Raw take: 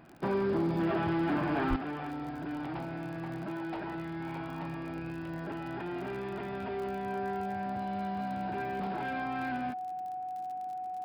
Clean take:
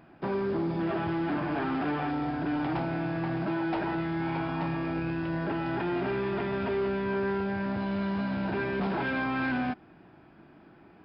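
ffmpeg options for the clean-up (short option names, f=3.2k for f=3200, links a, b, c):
-filter_complex "[0:a]adeclick=t=4,bandreject=f=740:w=30,asplit=3[a][b][c];[a]afade=t=out:st=1.69:d=0.02[d];[b]highpass=f=140:w=0.5412,highpass=f=140:w=1.3066,afade=t=in:st=1.69:d=0.02,afade=t=out:st=1.81:d=0.02[e];[c]afade=t=in:st=1.81:d=0.02[f];[d][e][f]amix=inputs=3:normalize=0,asetnsamples=n=441:p=0,asendcmd='1.76 volume volume 7.5dB',volume=0dB"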